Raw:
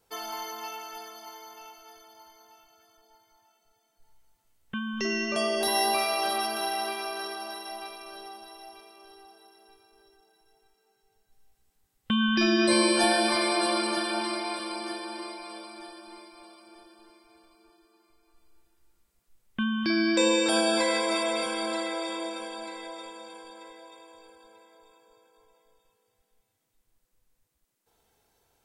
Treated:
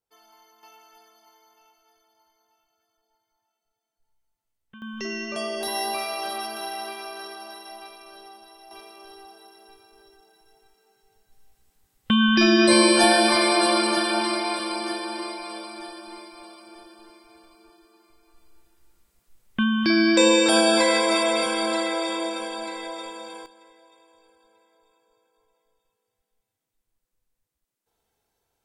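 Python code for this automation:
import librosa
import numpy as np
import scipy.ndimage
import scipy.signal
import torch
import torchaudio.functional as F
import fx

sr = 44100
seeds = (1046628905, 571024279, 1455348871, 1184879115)

y = fx.gain(x, sr, db=fx.steps((0.0, -20.0), (0.63, -13.0), (4.82, -2.5), (8.71, 6.0), (23.46, -6.5)))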